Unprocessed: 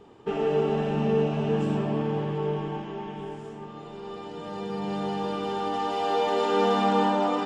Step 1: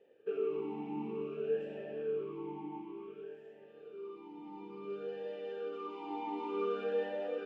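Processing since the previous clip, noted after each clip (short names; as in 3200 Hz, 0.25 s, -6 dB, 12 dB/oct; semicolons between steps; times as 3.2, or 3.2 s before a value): vowel sweep e-u 0.56 Hz; gain -2 dB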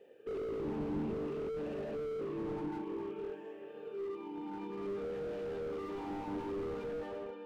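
ending faded out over 1.28 s; diffused feedback echo 0.49 s, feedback 44%, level -13 dB; slew limiter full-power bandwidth 3.1 Hz; gain +6 dB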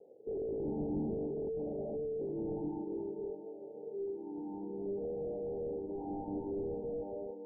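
steep low-pass 850 Hz 96 dB/oct; gain +1 dB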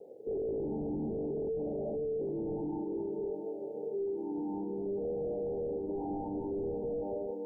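limiter -37 dBFS, peak gain reduction 10 dB; gain +7.5 dB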